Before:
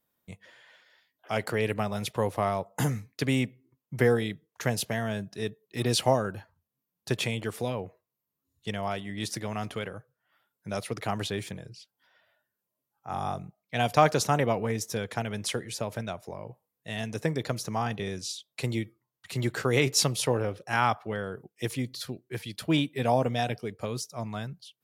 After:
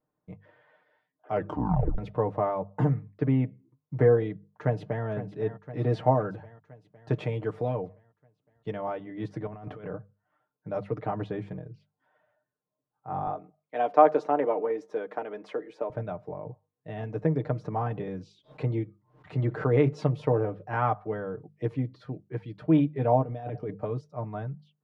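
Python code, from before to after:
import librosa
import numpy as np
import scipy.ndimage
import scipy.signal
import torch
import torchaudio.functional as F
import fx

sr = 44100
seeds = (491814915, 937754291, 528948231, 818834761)

y = fx.air_absorb(x, sr, metres=200.0, at=(2.94, 3.44))
y = fx.echo_throw(y, sr, start_s=4.29, length_s=0.76, ms=510, feedback_pct=60, wet_db=-11.0)
y = fx.high_shelf(y, sr, hz=3500.0, db=7.0, at=(6.16, 8.81))
y = fx.over_compress(y, sr, threshold_db=-38.0, ratio=-0.5, at=(9.47, 9.96))
y = fx.highpass(y, sr, hz=280.0, slope=24, at=(13.27, 15.9))
y = fx.pre_swell(y, sr, db_per_s=140.0, at=(17.52, 19.76))
y = fx.over_compress(y, sr, threshold_db=-36.0, ratio=-1.0, at=(23.21, 23.77), fade=0.02)
y = fx.edit(y, sr, fx.tape_stop(start_s=1.32, length_s=0.66), tone=tone)
y = scipy.signal.sosfilt(scipy.signal.butter(2, 1000.0, 'lowpass', fs=sr, output='sos'), y)
y = fx.hum_notches(y, sr, base_hz=50, count=4)
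y = y + 0.62 * np.pad(y, (int(6.6 * sr / 1000.0), 0))[:len(y)]
y = y * librosa.db_to_amplitude(1.0)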